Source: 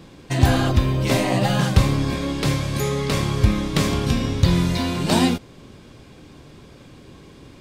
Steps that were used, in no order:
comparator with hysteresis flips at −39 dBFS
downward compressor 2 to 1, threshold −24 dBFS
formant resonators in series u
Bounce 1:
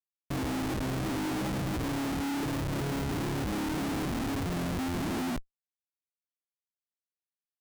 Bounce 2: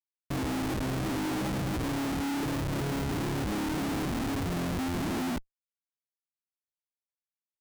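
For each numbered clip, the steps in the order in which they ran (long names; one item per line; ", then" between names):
formant resonators in series, then downward compressor, then comparator with hysteresis
formant resonators in series, then comparator with hysteresis, then downward compressor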